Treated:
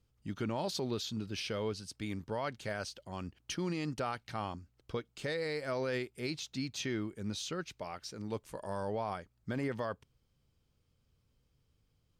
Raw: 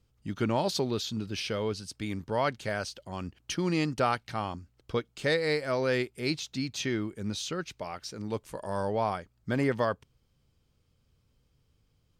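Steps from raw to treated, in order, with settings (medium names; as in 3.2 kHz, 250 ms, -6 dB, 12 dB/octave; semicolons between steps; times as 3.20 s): peak limiter -22 dBFS, peak gain reduction 7 dB; trim -4.5 dB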